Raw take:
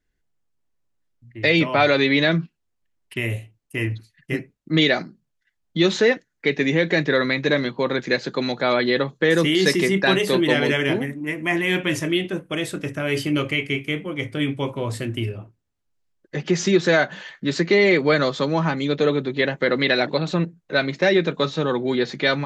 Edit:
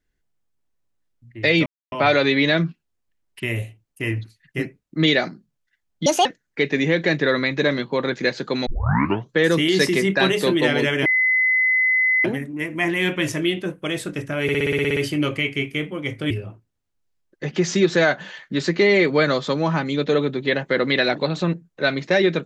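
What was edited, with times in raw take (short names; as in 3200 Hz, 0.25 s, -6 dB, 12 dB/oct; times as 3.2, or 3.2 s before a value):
1.66 insert silence 0.26 s
5.8–6.12 speed 164%
8.53 tape start 0.64 s
10.92 add tone 2030 Hz -15 dBFS 1.19 s
13.1 stutter 0.06 s, 10 plays
14.44–15.22 cut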